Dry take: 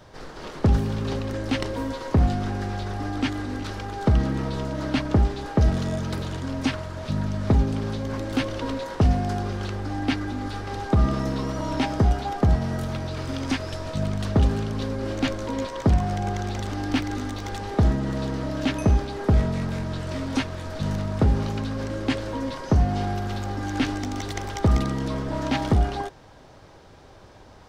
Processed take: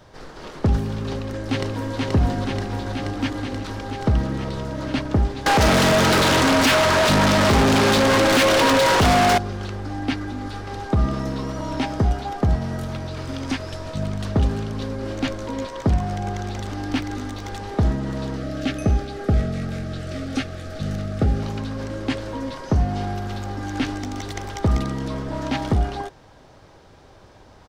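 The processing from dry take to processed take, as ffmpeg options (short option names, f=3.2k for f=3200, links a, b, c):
-filter_complex "[0:a]asplit=2[a][b];[b]afade=t=in:st=1.02:d=0.01,afade=t=out:st=1.96:d=0.01,aecho=0:1:480|960|1440|1920|2400|2880|3360|3840|4320|4800|5280|5760:0.794328|0.635463|0.50837|0.406696|0.325357|0.260285|0.208228|0.166583|0.133266|0.106613|0.0852903|0.0682323[c];[a][c]amix=inputs=2:normalize=0,asettb=1/sr,asplit=3[d][e][f];[d]atrim=end=5.464[g];[e]atrim=start=5.46:end=9.38,asetpts=PTS-STARTPTS,afade=t=in:d=0.004:c=qsin,afade=t=out:st=3.916:d=0.004:c=qsin,asplit=2[h][i];[i]highpass=f=720:p=1,volume=40dB,asoftclip=type=tanh:threshold=-9.5dB[j];[h][j]amix=inputs=2:normalize=0,lowpass=f=5.6k:p=1,volume=-6dB[k];[f]atrim=start=9.376[l];[g][k]acrossfade=d=0.004:c1=hsin:c2=qsin[m];[m][l]acrossfade=d=0.004:c1=qsin:c2=hsin,asettb=1/sr,asplit=3[n][o][p];[n]atrim=end=18.364[q];[o]atrim=start=18.36:end=21.43,asetpts=PTS-STARTPTS,afade=t=in:d=0.004:c=qsin,afade=t=out:st=3.066:d=0.004:c=qsin,asuperstop=centerf=970:order=12:qfactor=3.8[r];[p]atrim=start=21.426[s];[q][r]acrossfade=d=0.004:c1=hsin:c2=qsin[t];[t][s]acrossfade=d=0.004:c1=qsin:c2=hsin"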